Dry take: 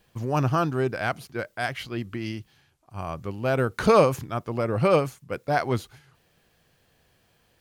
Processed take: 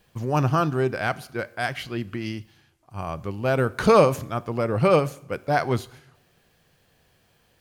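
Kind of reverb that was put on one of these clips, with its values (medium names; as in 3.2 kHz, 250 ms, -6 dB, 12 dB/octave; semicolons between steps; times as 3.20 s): two-slope reverb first 0.59 s, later 1.6 s, DRR 16.5 dB; trim +1.5 dB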